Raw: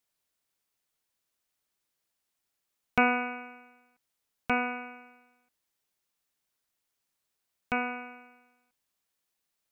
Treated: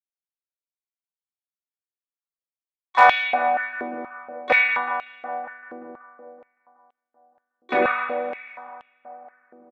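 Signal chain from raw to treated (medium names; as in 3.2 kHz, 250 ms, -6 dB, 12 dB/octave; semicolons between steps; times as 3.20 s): gate with hold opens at -59 dBFS; spectral noise reduction 17 dB; low-pass 3.9 kHz 12 dB/octave; in parallel at +1 dB: peak limiter -19.5 dBFS, peak gain reduction 10.5 dB; on the sum: saturation -9.5 dBFS, distortion -22 dB; harmony voices -7 st -9 dB, -4 st -5 dB, +7 st -16 dB; wavefolder -9.5 dBFS; rotary cabinet horn 0.85 Hz, later 8 Hz, at 6.95 s; on a send: filtered feedback delay 188 ms, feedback 75%, low-pass 2.4 kHz, level -9 dB; on the sum: simulated room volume 330 m³, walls furnished, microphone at 2.1 m; step-sequenced high-pass 4.2 Hz 380–3000 Hz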